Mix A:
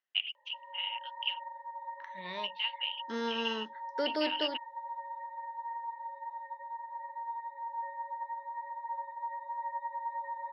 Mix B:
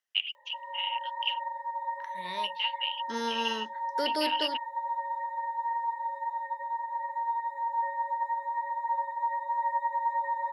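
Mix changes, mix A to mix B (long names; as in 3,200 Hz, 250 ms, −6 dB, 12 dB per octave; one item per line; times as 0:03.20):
background +7.5 dB
master: remove high-frequency loss of the air 160 metres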